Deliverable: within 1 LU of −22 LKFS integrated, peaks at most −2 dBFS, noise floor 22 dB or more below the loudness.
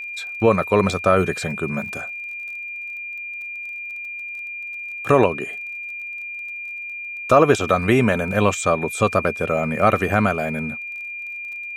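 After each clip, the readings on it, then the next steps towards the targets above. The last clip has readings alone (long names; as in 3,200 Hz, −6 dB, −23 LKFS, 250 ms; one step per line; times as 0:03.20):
crackle rate 27 per second; interfering tone 2,400 Hz; level of the tone −29 dBFS; integrated loudness −22.0 LKFS; sample peak −2.5 dBFS; target loudness −22.0 LKFS
→ click removal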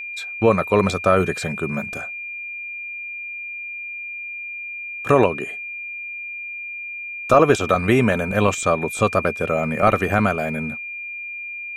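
crackle rate 0.34 per second; interfering tone 2,400 Hz; level of the tone −29 dBFS
→ notch filter 2,400 Hz, Q 30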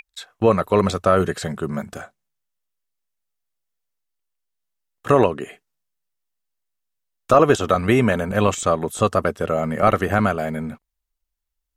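interfering tone none found; integrated loudness −19.5 LKFS; sample peak −2.5 dBFS; target loudness −22.0 LKFS
→ level −2.5 dB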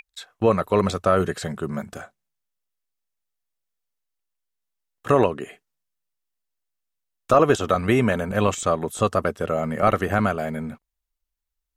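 integrated loudness −22.0 LKFS; sample peak −5.0 dBFS; background noise floor −82 dBFS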